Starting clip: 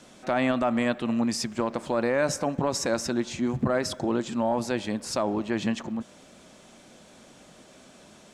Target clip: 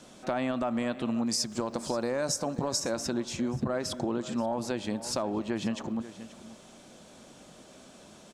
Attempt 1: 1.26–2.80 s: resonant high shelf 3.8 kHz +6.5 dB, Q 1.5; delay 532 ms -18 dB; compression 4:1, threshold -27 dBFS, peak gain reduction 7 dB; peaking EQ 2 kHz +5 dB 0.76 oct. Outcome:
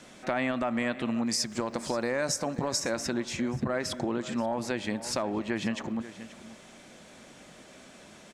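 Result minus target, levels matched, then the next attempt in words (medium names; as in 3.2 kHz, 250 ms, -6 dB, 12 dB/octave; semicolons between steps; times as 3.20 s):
2 kHz band +5.5 dB
1.26–2.80 s: resonant high shelf 3.8 kHz +6.5 dB, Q 1.5; delay 532 ms -18 dB; compression 4:1, threshold -27 dBFS, peak gain reduction 7 dB; peaking EQ 2 kHz -4 dB 0.76 oct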